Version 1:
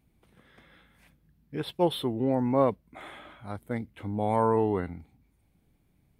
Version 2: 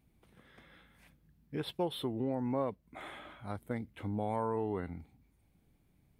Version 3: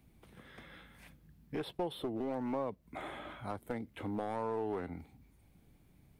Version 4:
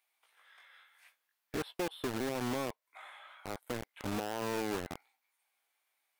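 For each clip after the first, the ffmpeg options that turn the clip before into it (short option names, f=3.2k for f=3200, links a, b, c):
-af "acompressor=threshold=-31dB:ratio=2.5,volume=-2dB"
-filter_complex "[0:a]acrossover=split=260|1000[a][b][c];[a]acompressor=threshold=-52dB:ratio=4[d];[b]acompressor=threshold=-40dB:ratio=4[e];[c]acompressor=threshold=-54dB:ratio=4[f];[d][e][f]amix=inputs=3:normalize=0,aeval=exprs='clip(val(0),-1,0.0126)':c=same,volume=5.5dB"
-filter_complex "[0:a]acrossover=split=800[a][b];[a]acrusher=bits=5:mix=0:aa=0.000001[c];[b]flanger=delay=16:depth=6.7:speed=0.56[d];[c][d]amix=inputs=2:normalize=0"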